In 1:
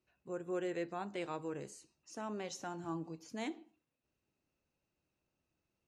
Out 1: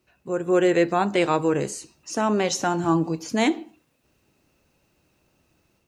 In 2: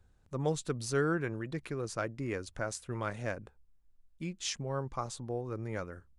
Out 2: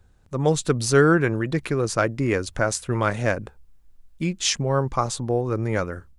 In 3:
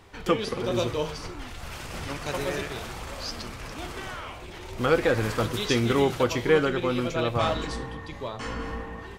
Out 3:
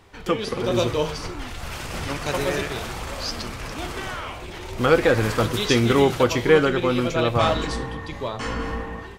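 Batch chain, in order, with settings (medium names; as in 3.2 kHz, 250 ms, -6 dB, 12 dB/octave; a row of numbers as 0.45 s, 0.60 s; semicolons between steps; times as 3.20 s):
level rider gain up to 5.5 dB; normalise loudness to -23 LUFS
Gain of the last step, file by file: +14.0 dB, +8.0 dB, 0.0 dB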